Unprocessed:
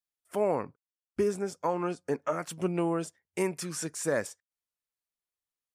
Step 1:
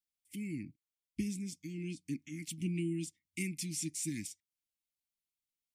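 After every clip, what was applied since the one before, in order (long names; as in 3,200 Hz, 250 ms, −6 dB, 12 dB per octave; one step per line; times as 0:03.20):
Chebyshev band-stop filter 320–2,100 Hz, order 5
level −1 dB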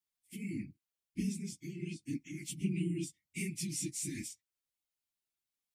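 random phases in long frames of 50 ms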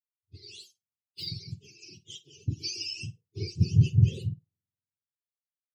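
frequency axis turned over on the octave scale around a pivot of 950 Hz
flutter between parallel walls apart 9 metres, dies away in 0.2 s
multiband upward and downward expander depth 100%
level +1 dB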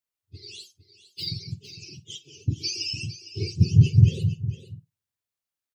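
single-tap delay 457 ms −13.5 dB
level +5 dB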